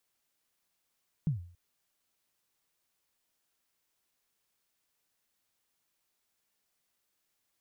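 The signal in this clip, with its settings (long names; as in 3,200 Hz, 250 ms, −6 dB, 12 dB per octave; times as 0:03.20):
synth kick length 0.28 s, from 170 Hz, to 87 Hz, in 126 ms, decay 0.48 s, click off, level −23 dB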